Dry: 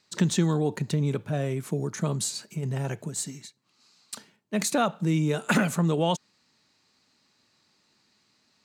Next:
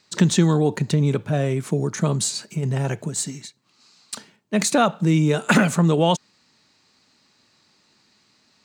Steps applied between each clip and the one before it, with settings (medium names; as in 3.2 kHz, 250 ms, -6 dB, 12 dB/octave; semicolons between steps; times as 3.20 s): peaking EQ 12 kHz -12.5 dB 0.22 oct; trim +6.5 dB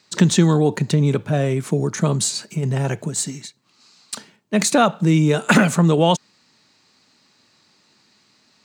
high-pass 82 Hz; trim +2.5 dB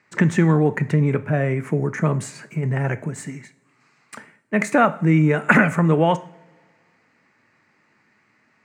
resonant high shelf 2.8 kHz -11 dB, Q 3; two-slope reverb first 0.45 s, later 2.1 s, from -21 dB, DRR 12.5 dB; trim -2 dB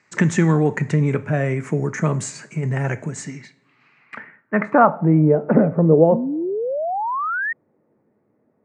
low-pass sweep 7.1 kHz -> 510 Hz, 3.10–5.45 s; painted sound rise, 6.11–7.53 s, 210–1900 Hz -23 dBFS